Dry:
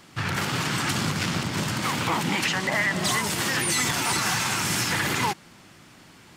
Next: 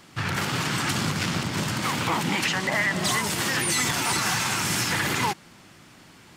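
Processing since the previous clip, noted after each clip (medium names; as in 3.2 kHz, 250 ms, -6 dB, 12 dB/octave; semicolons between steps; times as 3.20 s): no audible change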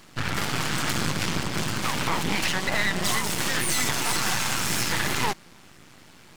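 half-wave rectifier; trim +3.5 dB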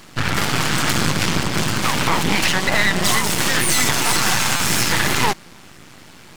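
buffer glitch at 4.56 s, samples 256, times 6; trim +7.5 dB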